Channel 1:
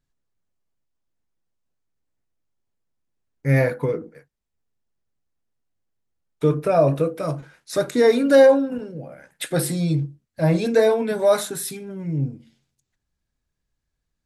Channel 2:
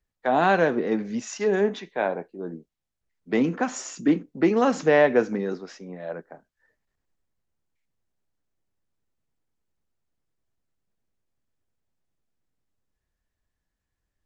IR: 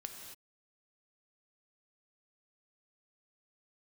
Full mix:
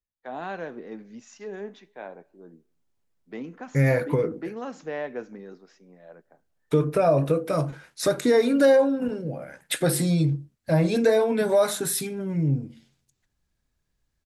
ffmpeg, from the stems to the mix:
-filter_complex "[0:a]adelay=300,volume=3dB[a];[1:a]volume=-14.5dB,asplit=2[b][c];[c]volume=-21.5dB[d];[2:a]atrim=start_sample=2205[e];[d][e]afir=irnorm=-1:irlink=0[f];[a][b][f]amix=inputs=3:normalize=0,acompressor=threshold=-21dB:ratio=2"

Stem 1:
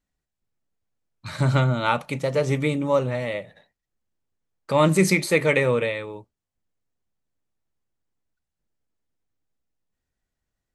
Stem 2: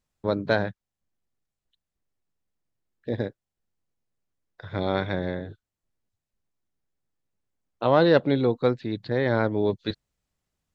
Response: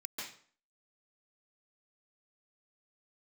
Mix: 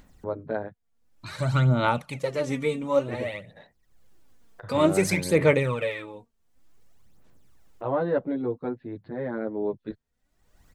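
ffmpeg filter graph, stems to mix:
-filter_complex "[0:a]aphaser=in_gain=1:out_gain=1:delay=4.4:decay=0.63:speed=0.55:type=sinusoidal,volume=-6dB[a];[1:a]lowpass=1.4k,asplit=2[b][c];[c]adelay=8.8,afreqshift=-0.34[d];[b][d]amix=inputs=2:normalize=1,volume=-3.5dB[e];[a][e]amix=inputs=2:normalize=0,acompressor=mode=upward:threshold=-35dB:ratio=2.5"

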